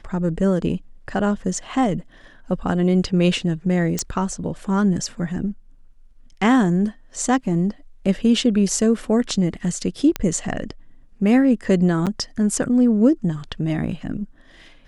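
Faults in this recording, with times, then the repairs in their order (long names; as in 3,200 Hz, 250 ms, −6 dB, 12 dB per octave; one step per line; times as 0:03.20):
0:03.99: click −8 dBFS
0:10.16: click −7 dBFS
0:12.06–0:12.07: drop-out 7.7 ms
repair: click removal
repair the gap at 0:12.06, 7.7 ms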